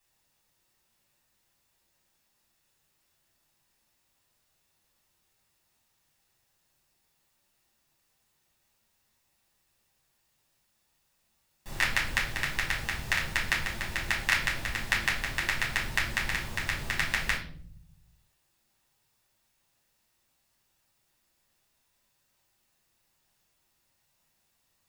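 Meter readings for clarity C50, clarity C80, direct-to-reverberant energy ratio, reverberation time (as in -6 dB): 7.5 dB, 12.0 dB, -5.5 dB, 0.55 s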